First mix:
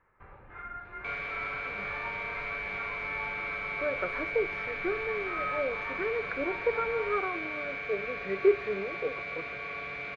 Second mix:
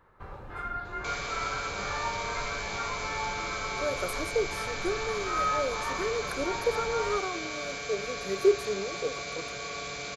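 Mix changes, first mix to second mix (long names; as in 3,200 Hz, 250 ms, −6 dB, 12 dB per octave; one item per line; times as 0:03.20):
speech −8.5 dB
second sound −5.5 dB
master: remove transistor ladder low-pass 2,600 Hz, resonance 50%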